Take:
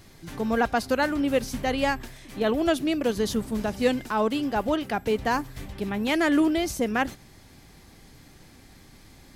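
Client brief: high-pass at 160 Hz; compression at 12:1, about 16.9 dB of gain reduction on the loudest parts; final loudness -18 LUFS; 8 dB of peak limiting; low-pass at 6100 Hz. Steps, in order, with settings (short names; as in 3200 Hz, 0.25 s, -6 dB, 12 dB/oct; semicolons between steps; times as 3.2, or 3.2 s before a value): HPF 160 Hz; LPF 6100 Hz; compressor 12:1, threshold -35 dBFS; gain +24.5 dB; limiter -9 dBFS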